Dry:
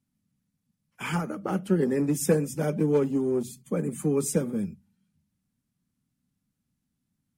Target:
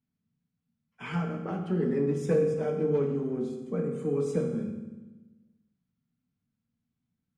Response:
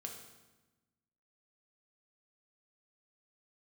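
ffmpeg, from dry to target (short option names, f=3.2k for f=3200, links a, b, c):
-filter_complex "[0:a]lowpass=3.8k[a];[1:a]atrim=start_sample=2205,asetrate=43659,aresample=44100[b];[a][b]afir=irnorm=-1:irlink=0,volume=-1.5dB"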